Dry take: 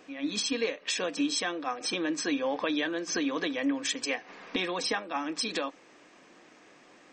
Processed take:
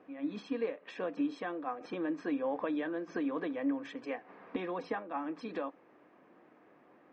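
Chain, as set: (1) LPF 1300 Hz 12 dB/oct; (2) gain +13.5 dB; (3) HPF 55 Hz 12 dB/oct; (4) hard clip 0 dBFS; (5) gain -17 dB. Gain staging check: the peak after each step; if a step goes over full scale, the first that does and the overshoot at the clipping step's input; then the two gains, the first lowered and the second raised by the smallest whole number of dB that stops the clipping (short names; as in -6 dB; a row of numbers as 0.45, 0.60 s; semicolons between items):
-19.0, -5.5, -5.0, -5.0, -22.0 dBFS; no overload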